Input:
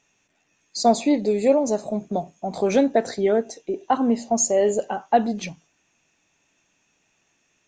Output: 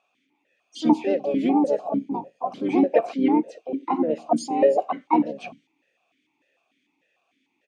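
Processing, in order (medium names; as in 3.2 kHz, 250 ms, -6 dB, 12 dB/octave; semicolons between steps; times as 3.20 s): harmony voices -7 st -11 dB, -5 st -7 dB, +5 st -2 dB; stepped vowel filter 6.7 Hz; trim +7 dB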